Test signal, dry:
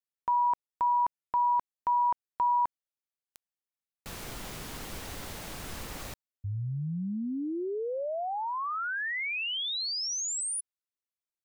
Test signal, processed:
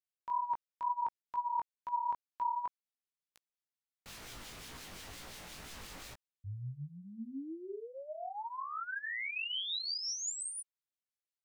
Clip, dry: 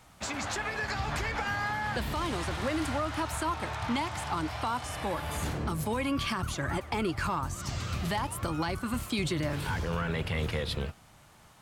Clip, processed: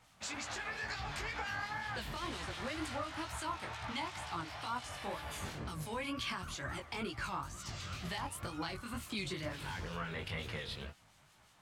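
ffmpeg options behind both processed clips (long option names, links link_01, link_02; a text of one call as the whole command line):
ffmpeg -i in.wav -filter_complex "[0:a]equalizer=frequency=3600:width=0.35:gain=6.5,acrossover=split=2000[link_01][link_02];[link_01]aeval=exprs='val(0)*(1-0.5/2+0.5/2*cos(2*PI*5.7*n/s))':channel_layout=same[link_03];[link_02]aeval=exprs='val(0)*(1-0.5/2-0.5/2*cos(2*PI*5.7*n/s))':channel_layout=same[link_04];[link_03][link_04]amix=inputs=2:normalize=0,flanger=delay=16:depth=6.2:speed=2.1,volume=-6dB" out.wav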